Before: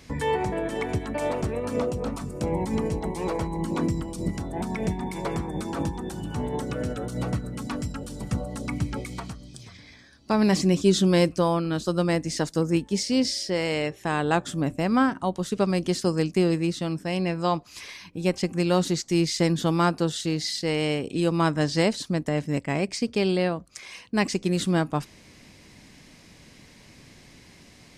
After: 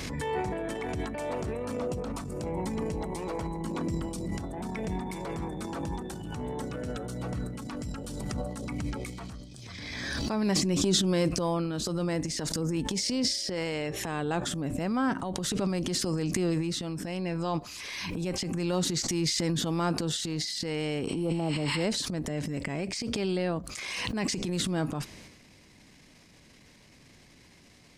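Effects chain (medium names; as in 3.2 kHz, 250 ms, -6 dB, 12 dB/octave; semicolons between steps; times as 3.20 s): spectral replace 21.10–21.81 s, 850–9000 Hz both; transient shaper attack -10 dB, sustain +9 dB; swell ahead of each attack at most 23 dB/s; trim -6 dB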